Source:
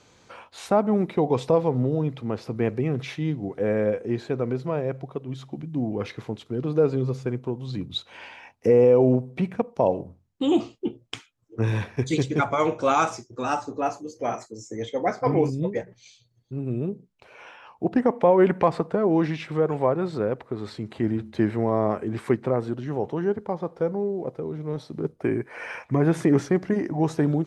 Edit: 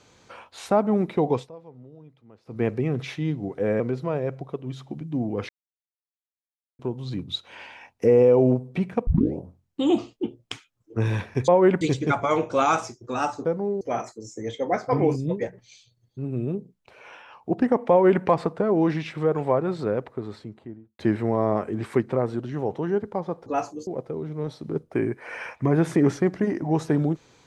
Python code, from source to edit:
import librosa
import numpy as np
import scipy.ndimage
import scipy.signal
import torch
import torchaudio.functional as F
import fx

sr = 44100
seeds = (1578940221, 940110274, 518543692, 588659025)

y = fx.studio_fade_out(x, sr, start_s=20.32, length_s=1.01)
y = fx.edit(y, sr, fx.fade_down_up(start_s=1.32, length_s=1.3, db=-23.0, fade_s=0.17),
    fx.cut(start_s=3.8, length_s=0.62),
    fx.silence(start_s=6.11, length_s=1.3),
    fx.tape_start(start_s=9.69, length_s=0.32),
    fx.swap(start_s=13.74, length_s=0.41, other_s=23.8, other_length_s=0.36),
    fx.duplicate(start_s=18.24, length_s=0.33, to_s=12.1), tone=tone)